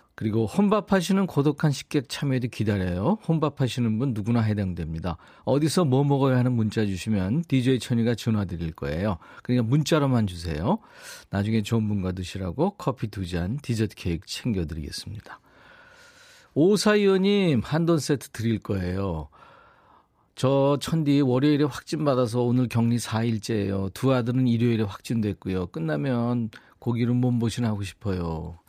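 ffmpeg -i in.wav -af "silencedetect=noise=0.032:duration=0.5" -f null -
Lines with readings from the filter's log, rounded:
silence_start: 15.34
silence_end: 16.56 | silence_duration: 1.22
silence_start: 19.23
silence_end: 20.37 | silence_duration: 1.14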